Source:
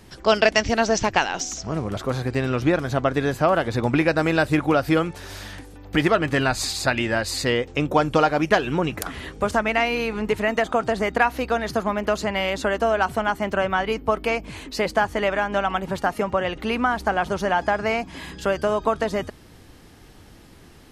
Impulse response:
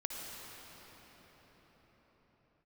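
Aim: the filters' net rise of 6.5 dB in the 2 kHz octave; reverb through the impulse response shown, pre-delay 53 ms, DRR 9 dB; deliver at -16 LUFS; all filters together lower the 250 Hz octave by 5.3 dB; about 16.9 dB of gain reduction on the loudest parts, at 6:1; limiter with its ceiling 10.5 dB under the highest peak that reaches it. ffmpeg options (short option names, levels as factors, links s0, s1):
-filter_complex "[0:a]equalizer=f=250:t=o:g=-7.5,equalizer=f=2000:t=o:g=8.5,acompressor=threshold=0.0355:ratio=6,alimiter=limit=0.0668:level=0:latency=1,asplit=2[s0][s1];[1:a]atrim=start_sample=2205,adelay=53[s2];[s1][s2]afir=irnorm=-1:irlink=0,volume=0.299[s3];[s0][s3]amix=inputs=2:normalize=0,volume=7.94"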